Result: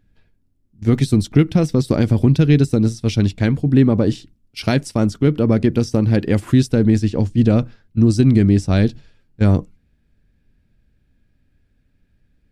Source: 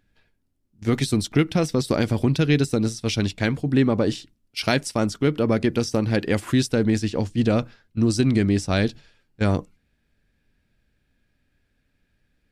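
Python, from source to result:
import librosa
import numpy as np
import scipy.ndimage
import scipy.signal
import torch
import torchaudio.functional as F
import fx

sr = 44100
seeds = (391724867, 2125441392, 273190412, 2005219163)

y = fx.low_shelf(x, sr, hz=380.0, db=11.5)
y = F.gain(torch.from_numpy(y), -2.0).numpy()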